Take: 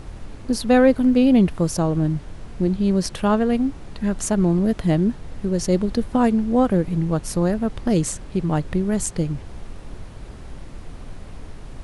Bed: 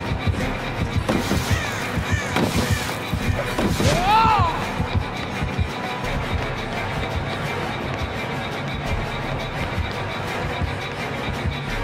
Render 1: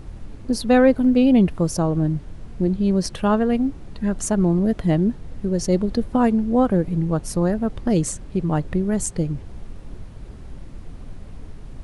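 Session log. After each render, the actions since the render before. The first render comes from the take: denoiser 6 dB, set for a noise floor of -38 dBFS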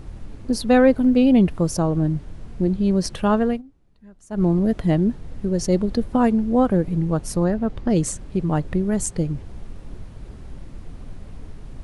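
3.48–4.43 dip -24 dB, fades 0.14 s; 7.44–7.97 air absorption 54 m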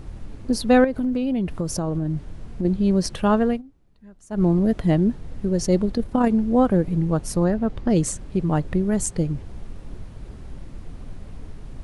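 0.84–2.65 compressor, threshold -20 dBFS; 5.91–6.31 AM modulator 33 Hz, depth 25%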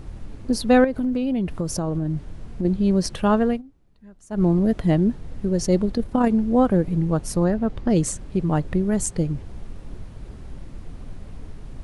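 nothing audible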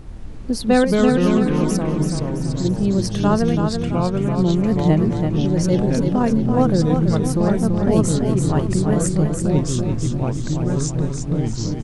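echoes that change speed 91 ms, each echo -3 st, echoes 3; feedback echo 0.333 s, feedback 46%, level -6 dB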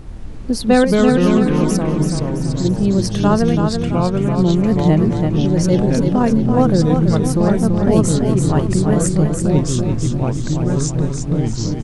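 gain +3 dB; limiter -2 dBFS, peak gain reduction 1.5 dB

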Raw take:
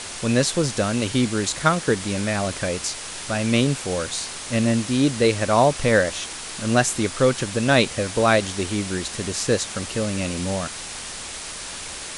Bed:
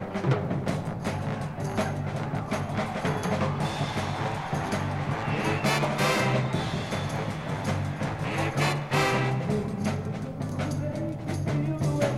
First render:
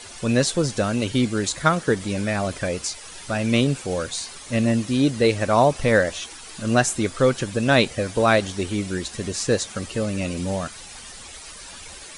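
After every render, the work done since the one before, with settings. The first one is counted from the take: denoiser 11 dB, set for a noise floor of -34 dBFS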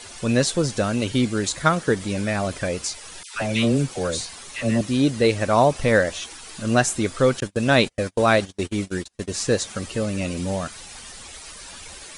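3.23–4.81 dispersion lows, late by 0.122 s, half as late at 1200 Hz; 7.4–9.3 gate -29 dBFS, range -36 dB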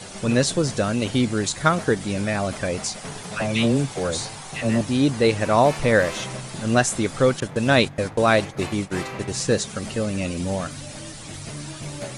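add bed -8.5 dB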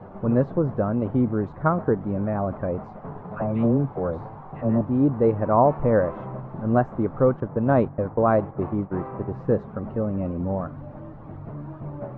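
Chebyshev low-pass 1100 Hz, order 3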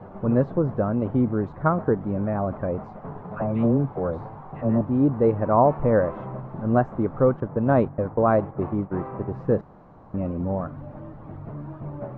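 9.61–10.14 room tone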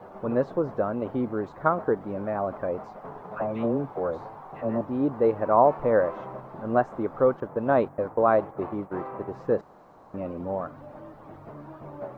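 tone controls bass -13 dB, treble +12 dB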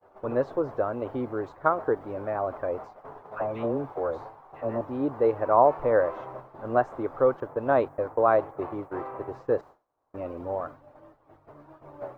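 expander -36 dBFS; bell 190 Hz -13.5 dB 0.57 oct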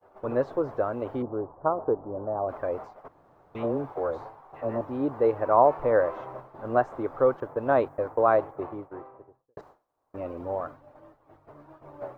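1.22–2.49 inverse Chebyshev low-pass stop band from 2700 Hz, stop band 50 dB; 3.08–3.55 room tone; 8.29–9.57 studio fade out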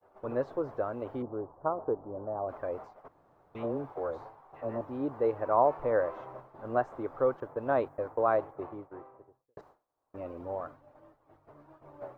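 gain -5.5 dB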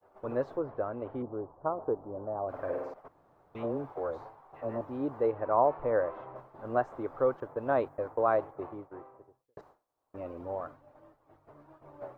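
0.57–1.82 air absorption 280 m; 2.48–2.94 flutter echo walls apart 8.9 m, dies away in 0.98 s; 5.26–6.36 air absorption 180 m

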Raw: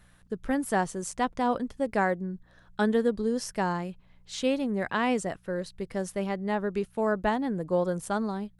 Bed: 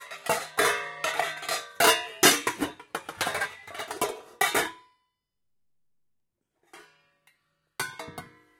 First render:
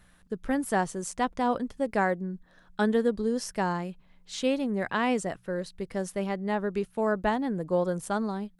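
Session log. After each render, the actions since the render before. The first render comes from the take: de-hum 60 Hz, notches 2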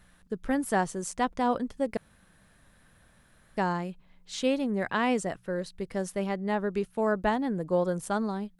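1.97–3.57 room tone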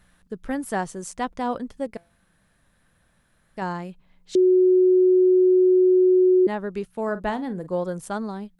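1.87–3.62 resonator 170 Hz, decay 0.37 s, mix 40%; 4.35–6.47 bleep 368 Hz -13 dBFS; 7.04–7.67 doubler 44 ms -13 dB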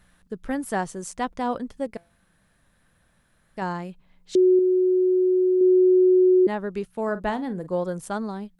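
4.59–5.61 gain -3.5 dB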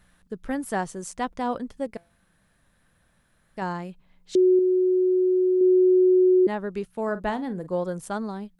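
gain -1 dB

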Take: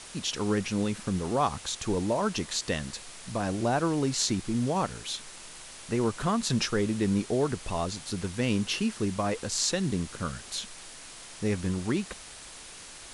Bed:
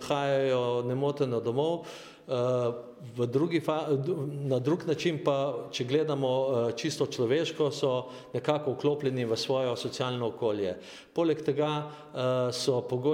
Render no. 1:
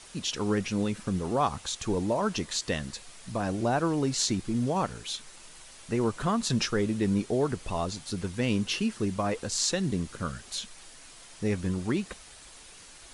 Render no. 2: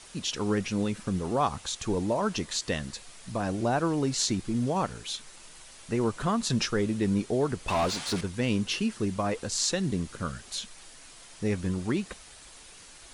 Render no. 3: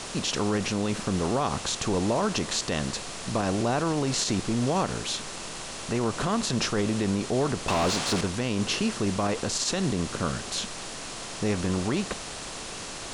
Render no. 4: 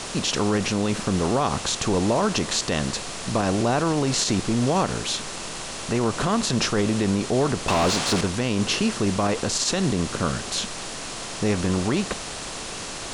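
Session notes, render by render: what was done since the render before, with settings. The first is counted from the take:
denoiser 6 dB, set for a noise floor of -46 dBFS
7.68–8.21 overdrive pedal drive 23 dB, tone 3100 Hz, clips at -18.5 dBFS
per-bin compression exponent 0.6; limiter -16.5 dBFS, peak gain reduction 7.5 dB
gain +4 dB

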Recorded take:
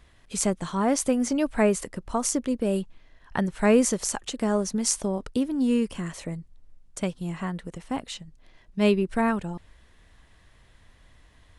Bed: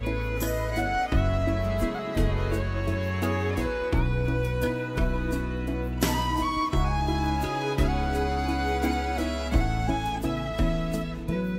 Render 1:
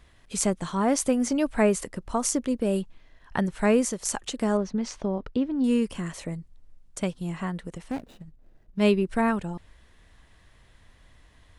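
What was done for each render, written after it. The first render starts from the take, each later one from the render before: 3.54–4.05 fade out linear, to -7.5 dB; 4.57–5.64 air absorption 210 m; 7.91–8.8 median filter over 41 samples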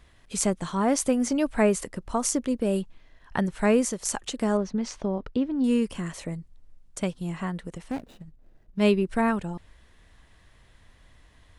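nothing audible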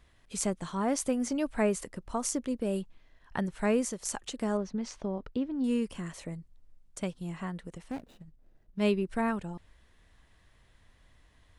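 gain -6 dB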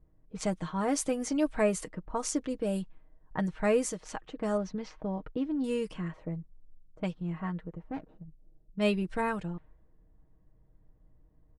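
low-pass opened by the level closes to 420 Hz, open at -26.5 dBFS; comb 6.4 ms, depth 56%

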